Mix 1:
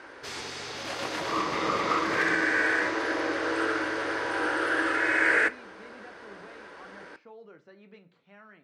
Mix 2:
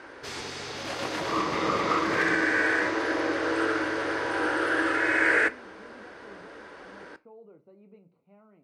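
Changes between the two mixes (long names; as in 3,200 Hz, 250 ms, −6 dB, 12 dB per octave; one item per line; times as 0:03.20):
speech: add moving average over 26 samples
background: add low-shelf EQ 470 Hz +4 dB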